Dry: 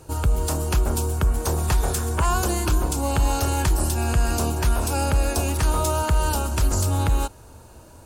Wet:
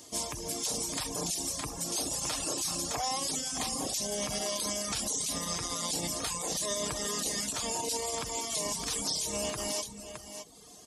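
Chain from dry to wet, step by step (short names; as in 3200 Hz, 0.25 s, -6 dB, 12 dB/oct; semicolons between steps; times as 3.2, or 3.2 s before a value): low shelf 350 Hz -3 dB; notch 2700 Hz, Q 12; shoebox room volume 3800 m³, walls furnished, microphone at 1.3 m; speed mistake 45 rpm record played at 33 rpm; HPF 150 Hz 12 dB/oct; high shelf 2600 Hz +12 dB; on a send: echo 0.614 s -12.5 dB; on the sum: limiter -16 dBFS, peak gain reduction 13 dB; reverb removal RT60 0.76 s; gain -5.5 dB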